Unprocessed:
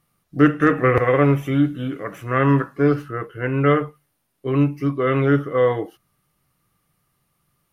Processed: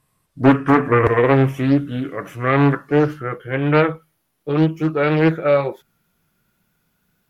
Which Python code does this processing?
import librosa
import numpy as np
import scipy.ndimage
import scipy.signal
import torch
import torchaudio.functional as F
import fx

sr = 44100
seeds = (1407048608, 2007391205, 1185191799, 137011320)

y = fx.speed_glide(x, sr, from_pct=89, to_pct=123)
y = fx.doppler_dist(y, sr, depth_ms=0.57)
y = F.gain(torch.from_numpy(y), 2.0).numpy()